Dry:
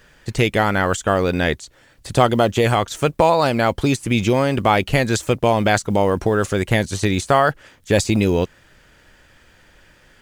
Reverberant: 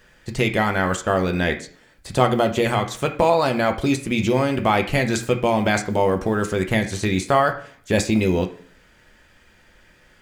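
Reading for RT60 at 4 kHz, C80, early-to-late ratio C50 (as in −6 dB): 0.50 s, 16.0 dB, 11.5 dB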